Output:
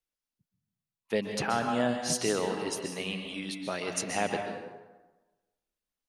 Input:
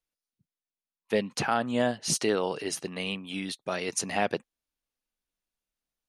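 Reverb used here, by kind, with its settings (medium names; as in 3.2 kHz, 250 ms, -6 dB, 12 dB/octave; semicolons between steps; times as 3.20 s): plate-style reverb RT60 1.2 s, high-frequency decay 0.6×, pre-delay 115 ms, DRR 4 dB; trim -3 dB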